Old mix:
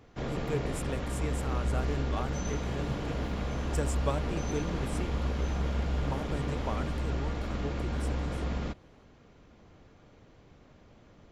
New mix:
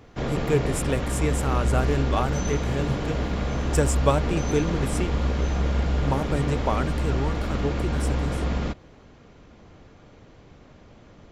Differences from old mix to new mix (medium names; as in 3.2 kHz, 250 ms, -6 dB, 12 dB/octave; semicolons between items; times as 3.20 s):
speech +11.0 dB; first sound +7.0 dB